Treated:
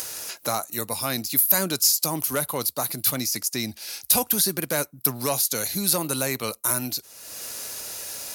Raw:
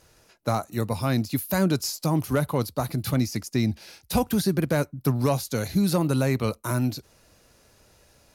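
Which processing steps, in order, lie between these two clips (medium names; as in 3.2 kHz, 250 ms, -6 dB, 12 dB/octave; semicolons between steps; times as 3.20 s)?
upward compressor, threshold -26 dBFS; RIAA curve recording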